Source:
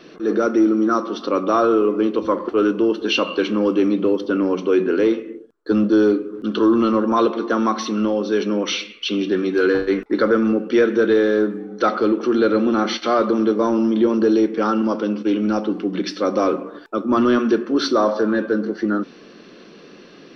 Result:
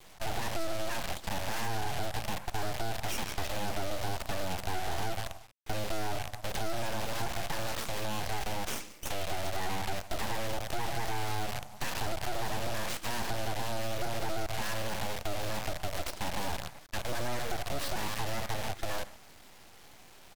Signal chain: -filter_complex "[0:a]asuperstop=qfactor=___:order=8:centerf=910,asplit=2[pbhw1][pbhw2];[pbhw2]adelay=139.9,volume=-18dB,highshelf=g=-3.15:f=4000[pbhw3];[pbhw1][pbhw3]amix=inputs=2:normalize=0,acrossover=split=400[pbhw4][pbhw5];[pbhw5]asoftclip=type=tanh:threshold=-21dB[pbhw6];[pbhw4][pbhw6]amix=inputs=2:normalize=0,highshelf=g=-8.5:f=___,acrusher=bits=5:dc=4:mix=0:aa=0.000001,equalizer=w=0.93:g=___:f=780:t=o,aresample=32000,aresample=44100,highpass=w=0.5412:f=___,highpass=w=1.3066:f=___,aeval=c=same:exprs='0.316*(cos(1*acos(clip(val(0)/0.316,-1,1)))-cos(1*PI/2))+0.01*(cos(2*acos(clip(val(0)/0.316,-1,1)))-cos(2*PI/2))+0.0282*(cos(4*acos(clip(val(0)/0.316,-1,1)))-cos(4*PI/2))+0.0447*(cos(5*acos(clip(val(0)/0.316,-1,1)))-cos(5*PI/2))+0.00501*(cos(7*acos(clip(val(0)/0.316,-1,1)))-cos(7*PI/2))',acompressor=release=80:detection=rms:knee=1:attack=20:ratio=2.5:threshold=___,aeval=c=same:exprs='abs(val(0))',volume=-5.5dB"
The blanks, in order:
2.4, 4700, -14, 290, 290, -25dB